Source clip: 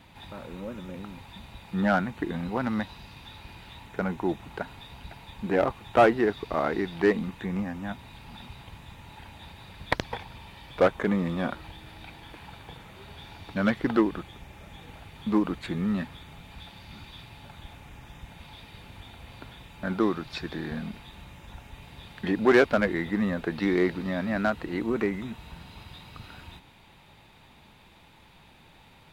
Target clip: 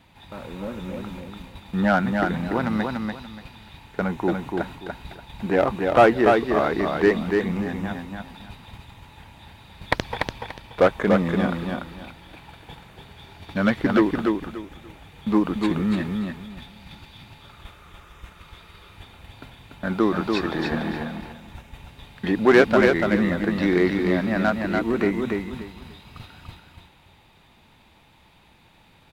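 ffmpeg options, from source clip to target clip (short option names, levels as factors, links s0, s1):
-filter_complex "[0:a]asettb=1/sr,asplit=3[s0][s1][s2];[s0]atrim=end=20.144[s3];[s1]atrim=start=20.14:end=21.04,asetpts=PTS-STARTPTS,afade=t=in:d=0.004:c=qsin,afade=t=out:st=0.896:d=0.004:c=qsin,equalizer=f=810:w=0.6:g=9[s4];[s2]atrim=start=21.036[s5];[s3][s4]acrossfade=d=0.004:c1=hsin:c2=qsin[s6];[s6][s5]acrossfade=d=0.004:c1=qsin:c2=hsin,agate=range=0.501:threshold=0.00708:ratio=16:detection=peak,asettb=1/sr,asplit=3[s7][s8][s9];[s7]atrim=end=17.404[s10];[s8]atrim=start=17.4:end=18.95,asetpts=PTS-STARTPTS,afade=t=in:d=0.004:c=qsin,afade=t=out:st=1.546:d=0.004:c=qsin,equalizer=f=125:t=o:w=0.33:g=-11,equalizer=f=250:t=o:w=0.33:g=-11,equalizer=f=400:t=o:w=0.33:g=5,equalizer=f=800:t=o:w=0.33:g=-6,equalizer=f=1250:t=o:w=0.33:g=12[s11];[s9]atrim=start=18.946[s12];[s10][s11]acrossfade=d=0.004:c1=hsin:c2=qsin[s13];[s13][s12]acrossfade=d=0.004:c1=qsin:c2=hsin,aecho=1:1:290|580|870:0.631|0.151|0.0363,volume=1.58"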